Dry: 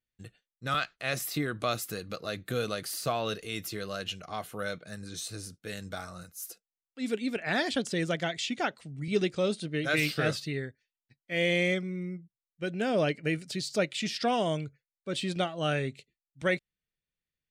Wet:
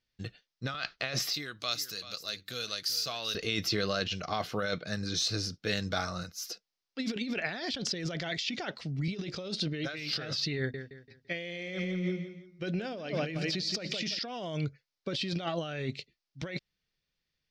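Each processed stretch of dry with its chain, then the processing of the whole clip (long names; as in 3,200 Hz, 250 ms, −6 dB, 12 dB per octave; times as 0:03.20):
0:01.33–0:03.35: first-order pre-emphasis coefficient 0.9 + single-tap delay 386 ms −14.5 dB
0:10.57–0:14.19: mains-hum notches 50/100/150/200/250 Hz + repeating echo 169 ms, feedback 34%, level −11.5 dB
whole clip: high shelf with overshoot 6,900 Hz −11 dB, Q 3; compressor whose output falls as the input rises −36 dBFS, ratio −1; level +2 dB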